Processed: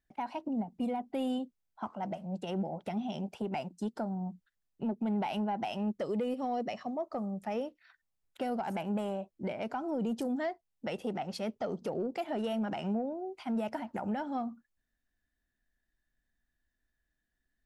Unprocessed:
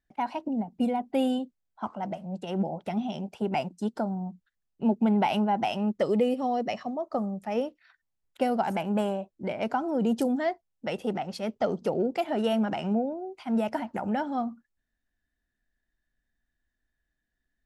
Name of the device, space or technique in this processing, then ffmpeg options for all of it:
soft clipper into limiter: -af "asoftclip=type=tanh:threshold=-15.5dB,alimiter=level_in=1dB:limit=-24dB:level=0:latency=1:release=292,volume=-1dB,volume=-1.5dB"

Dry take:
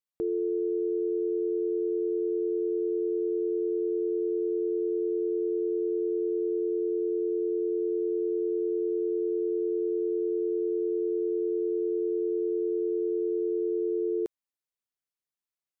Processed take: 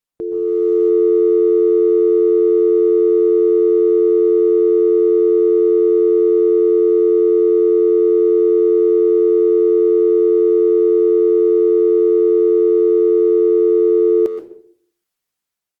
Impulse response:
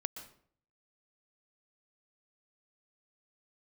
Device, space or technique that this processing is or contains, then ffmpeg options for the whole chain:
speakerphone in a meeting room: -filter_complex "[1:a]atrim=start_sample=2205[link_01];[0:a][link_01]afir=irnorm=-1:irlink=0,asplit=2[link_02][link_03];[link_03]adelay=130,highpass=300,lowpass=3400,asoftclip=type=hard:threshold=-29.5dB,volume=-15dB[link_04];[link_02][link_04]amix=inputs=2:normalize=0,dynaudnorm=framelen=170:gausssize=7:maxgain=8.5dB,volume=6dB" -ar 48000 -c:a libopus -b:a 32k

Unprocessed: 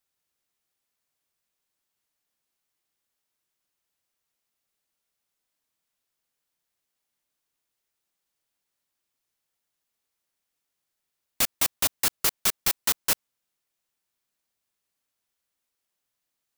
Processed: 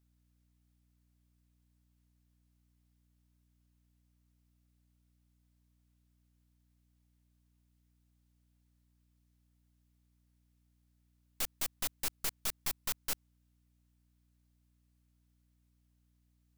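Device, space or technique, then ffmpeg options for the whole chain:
valve amplifier with mains hum: -af "aeval=exprs='(tanh(39.8*val(0)+0.7)-tanh(0.7))/39.8':channel_layout=same,aeval=exprs='val(0)+0.000282*(sin(2*PI*60*n/s)+sin(2*PI*2*60*n/s)/2+sin(2*PI*3*60*n/s)/3+sin(2*PI*4*60*n/s)/4+sin(2*PI*5*60*n/s)/5)':channel_layout=same"

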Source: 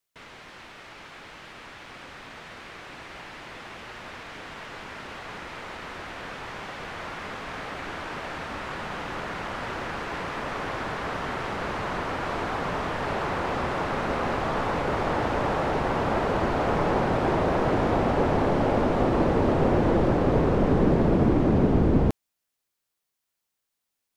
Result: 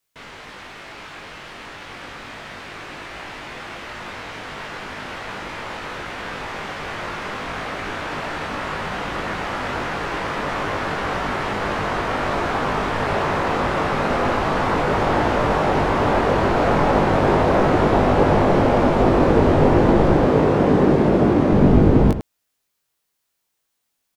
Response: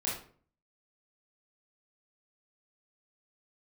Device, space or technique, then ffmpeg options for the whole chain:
slapback doubling: -filter_complex "[0:a]asplit=3[link_01][link_02][link_03];[link_02]adelay=20,volume=-3dB[link_04];[link_03]adelay=102,volume=-9.5dB[link_05];[link_01][link_04][link_05]amix=inputs=3:normalize=0,asettb=1/sr,asplit=3[link_06][link_07][link_08];[link_06]atrim=end=20.274[link_09];[link_07]atrim=start=20.27:end=21.52,asetpts=PTS-STARTPTS,afade=type=in:duration=0.004:curve=qsin,afade=type=out:start_time=1.246:duration=0.004:curve=qsin,highpass=frequency=150:poles=1[link_10];[link_08]atrim=start=21.516[link_11];[link_09][link_10]acrossfade=duration=0.004:curve1=hsin:curve2=qsin[link_12];[link_12][link_11]acrossfade=duration=0.004:curve1=qsin:curve2=hsin,volume=5dB"

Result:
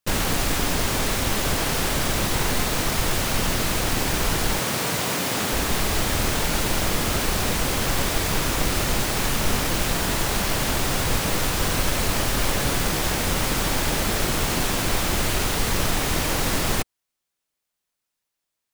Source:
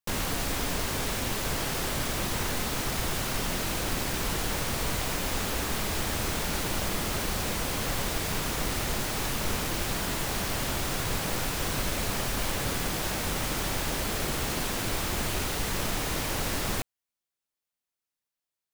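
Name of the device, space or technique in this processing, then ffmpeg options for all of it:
octave pedal: -filter_complex "[0:a]asplit=2[link_01][link_02];[link_02]asetrate=22050,aresample=44100,atempo=2,volume=-6dB[link_03];[link_01][link_03]amix=inputs=2:normalize=0,asettb=1/sr,asplit=3[link_04][link_05][link_06];[link_04]atrim=end=4.594[link_07];[link_05]atrim=start=4.59:end=5.53,asetpts=PTS-STARTPTS,afade=type=in:duration=0.004:curve=qsin,afade=type=out:start_time=0.936:duration=0.004:curve=qsin,highpass=frequency=110:width=0.5412,highpass=frequency=110:width=1.3066[link_08];[link_06]atrim=start=5.526[link_09];[link_07][link_08]acrossfade=duration=0.004:curve1=hsin:curve2=qsin[link_10];[link_10][link_09]acrossfade=duration=0.004:curve1=qsin:curve2=hsin,volume=6dB"

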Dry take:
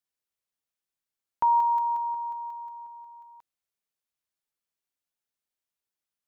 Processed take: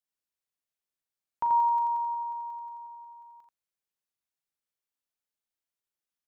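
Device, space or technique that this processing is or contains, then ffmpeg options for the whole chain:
slapback doubling: -filter_complex "[0:a]asplit=3[link_01][link_02][link_03];[link_02]adelay=39,volume=-9dB[link_04];[link_03]adelay=85,volume=-4.5dB[link_05];[link_01][link_04][link_05]amix=inputs=3:normalize=0,volume=-5dB"

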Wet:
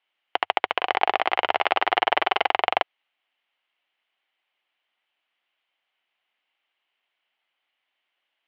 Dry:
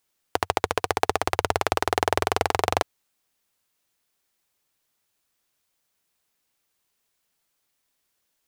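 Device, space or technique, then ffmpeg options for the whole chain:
phone earpiece: -filter_complex "[0:a]highpass=440,equalizer=frequency=450:width_type=q:width=4:gain=-6,equalizer=frequency=760:width_type=q:width=4:gain=4,equalizer=frequency=2100:width_type=q:width=4:gain=6,equalizer=frequency=3000:width_type=q:width=4:gain=10,lowpass=frequency=3200:width=0.5412,lowpass=frequency=3200:width=1.3066,asettb=1/sr,asplit=3[link_01][link_02][link_03];[link_01]atrim=end=0.774[link_04];[link_02]atrim=start=0.77:end=2.47,asetpts=PTS-STARTPTS,afade=type=in:duration=0.004:curve=qsin,afade=type=out:start_time=1.696:duration=0.004:curve=qsin,asplit=2[link_05][link_06];[link_06]adelay=42,volume=-6dB[link_07];[link_05][link_07]amix=inputs=2:normalize=0,atrim=end_sample=74970[link_08];[link_03]atrim=start=2.466[link_09];[link_04][link_08]acrossfade=duration=0.004:curve1=hsin:curve2=qsin[link_10];[link_10][link_09]acrossfade=duration=0.004:curve1=qsin:curve2=hsin"

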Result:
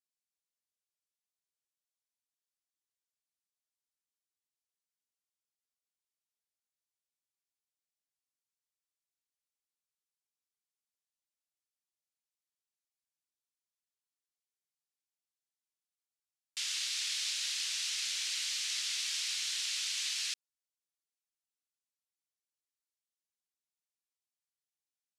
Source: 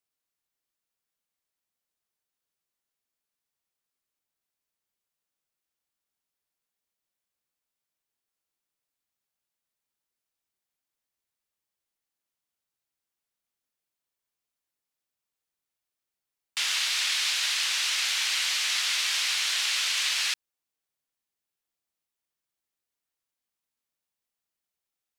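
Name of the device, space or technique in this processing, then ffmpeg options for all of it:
piezo pickup straight into a mixer: -af "lowpass=7500,aderivative,volume=-3dB"

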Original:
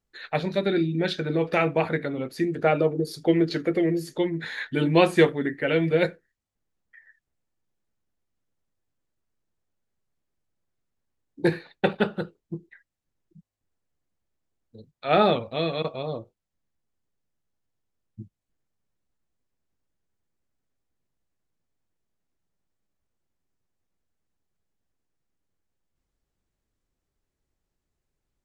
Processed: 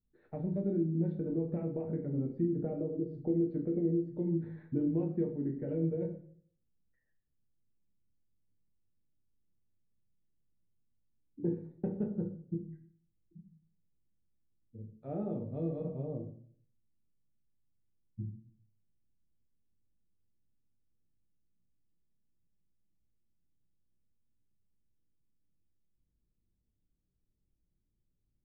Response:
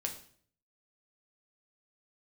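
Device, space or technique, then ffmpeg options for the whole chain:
television next door: -filter_complex "[0:a]acompressor=threshold=-25dB:ratio=6,lowpass=270[link_01];[1:a]atrim=start_sample=2205[link_02];[link_01][link_02]afir=irnorm=-1:irlink=0"

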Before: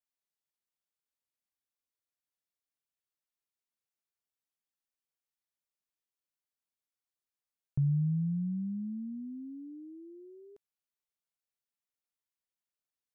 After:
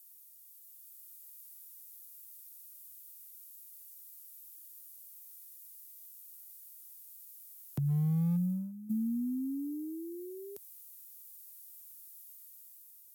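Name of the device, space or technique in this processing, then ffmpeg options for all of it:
FM broadcast chain: -filter_complex "[0:a]asplit=3[link_01][link_02][link_03];[link_01]afade=type=out:start_time=8.35:duration=0.02[link_04];[link_02]agate=range=-19dB:threshold=-33dB:ratio=16:detection=peak,afade=type=in:start_time=8.35:duration=0.02,afade=type=out:start_time=8.89:duration=0.02[link_05];[link_03]afade=type=in:start_time=8.89:duration=0.02[link_06];[link_04][link_05][link_06]amix=inputs=3:normalize=0,highpass=frequency=67:width=0.5412,highpass=frequency=67:width=1.3066,dynaudnorm=framelen=180:gausssize=9:maxgain=4dB,acrossover=split=150|300[link_07][link_08][link_09];[link_07]acompressor=threshold=-37dB:ratio=4[link_10];[link_08]acompressor=threshold=-41dB:ratio=4[link_11];[link_09]acompressor=threshold=-54dB:ratio=4[link_12];[link_10][link_11][link_12]amix=inputs=3:normalize=0,aemphasis=mode=production:type=75fm,alimiter=level_in=8dB:limit=-24dB:level=0:latency=1:release=249,volume=-8dB,asoftclip=type=hard:threshold=-33dB,lowpass=frequency=15000:width=0.5412,lowpass=frequency=15000:width=1.3066,aemphasis=mode=production:type=75fm,volume=7.5dB"

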